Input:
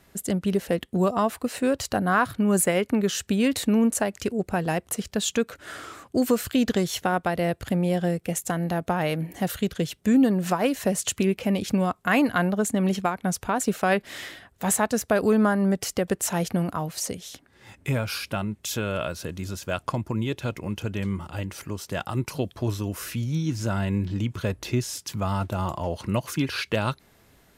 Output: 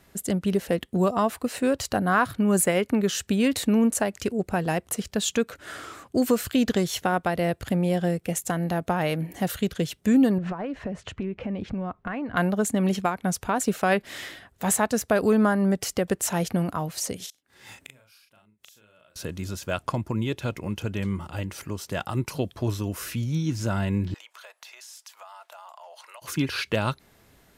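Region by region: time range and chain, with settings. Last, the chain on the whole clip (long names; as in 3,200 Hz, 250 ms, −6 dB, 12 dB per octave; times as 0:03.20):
0:10.38–0:12.37: low-pass filter 2,000 Hz + downward compressor, threshold −28 dBFS + low-shelf EQ 82 Hz +10.5 dB
0:17.16–0:19.16: spectral tilt +2 dB per octave + gate with flip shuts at −26 dBFS, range −31 dB + double-tracking delay 38 ms −3.5 dB
0:24.14–0:26.22: Butterworth high-pass 650 Hz + downward compressor 4 to 1, threshold −44 dBFS
whole clip: no processing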